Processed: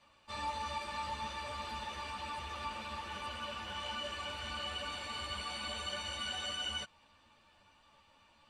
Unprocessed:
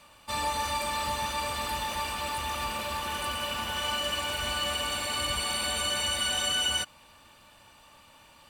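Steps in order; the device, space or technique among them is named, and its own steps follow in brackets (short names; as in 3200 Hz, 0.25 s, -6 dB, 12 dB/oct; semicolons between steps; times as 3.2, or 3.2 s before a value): string-machine ensemble chorus (ensemble effect; LPF 5400 Hz 12 dB/oct); gain -6.5 dB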